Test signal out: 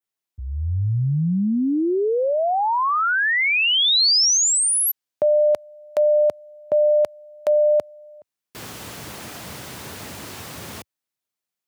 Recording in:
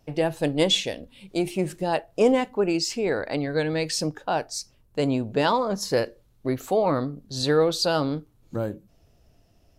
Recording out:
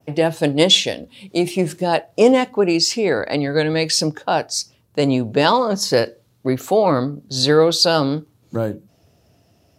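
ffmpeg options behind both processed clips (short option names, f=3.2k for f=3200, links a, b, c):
-af "highpass=f=83:w=0.5412,highpass=f=83:w=1.3066,adynamicequalizer=threshold=0.00794:dfrequency=4700:dqfactor=1.1:tfrequency=4700:tqfactor=1.1:attack=5:release=100:ratio=0.375:range=2:mode=boostabove:tftype=bell,volume=6.5dB"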